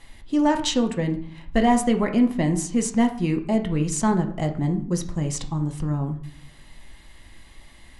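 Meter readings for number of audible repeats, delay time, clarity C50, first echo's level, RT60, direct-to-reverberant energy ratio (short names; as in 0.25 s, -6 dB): none, none, 11.0 dB, none, 0.55 s, 5.0 dB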